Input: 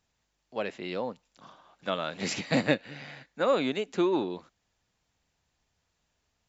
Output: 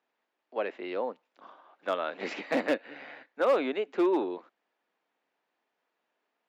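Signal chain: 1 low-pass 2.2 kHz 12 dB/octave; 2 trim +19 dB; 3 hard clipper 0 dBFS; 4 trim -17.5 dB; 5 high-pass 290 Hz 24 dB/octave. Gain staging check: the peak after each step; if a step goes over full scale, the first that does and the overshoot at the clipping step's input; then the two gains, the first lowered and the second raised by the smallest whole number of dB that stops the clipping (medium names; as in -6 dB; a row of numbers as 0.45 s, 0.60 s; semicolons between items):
-10.0 dBFS, +9.0 dBFS, 0.0 dBFS, -17.5 dBFS, -14.5 dBFS; step 2, 9.0 dB; step 2 +10 dB, step 4 -8.5 dB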